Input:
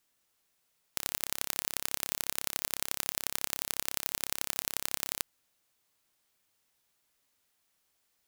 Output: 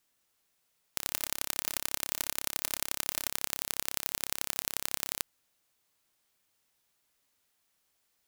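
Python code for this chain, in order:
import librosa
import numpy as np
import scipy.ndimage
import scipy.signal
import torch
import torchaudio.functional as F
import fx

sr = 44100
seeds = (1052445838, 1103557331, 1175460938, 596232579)

y = fx.comb(x, sr, ms=3.3, depth=0.36, at=(1.07, 3.28))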